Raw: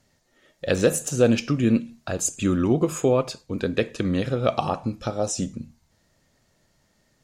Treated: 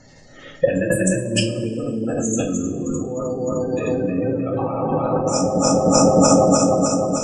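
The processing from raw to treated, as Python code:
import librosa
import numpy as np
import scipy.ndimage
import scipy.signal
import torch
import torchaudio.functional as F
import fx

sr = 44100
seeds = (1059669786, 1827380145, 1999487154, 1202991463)

y = fx.reverse_delay_fb(x, sr, ms=153, feedback_pct=84, wet_db=-2.0)
y = fx.spec_gate(y, sr, threshold_db=-20, keep='strong')
y = fx.dynamic_eq(y, sr, hz=860.0, q=2.3, threshold_db=-39.0, ratio=4.0, max_db=5)
y = fx.over_compress(y, sr, threshold_db=-30.0, ratio=-1.0)
y = fx.ripple_eq(y, sr, per_octave=1.3, db=17, at=(0.79, 1.64))
y = fx.rev_double_slope(y, sr, seeds[0], early_s=0.3, late_s=1.8, knee_db=-19, drr_db=-0.5)
y = F.gain(torch.from_numpy(y), 6.5).numpy()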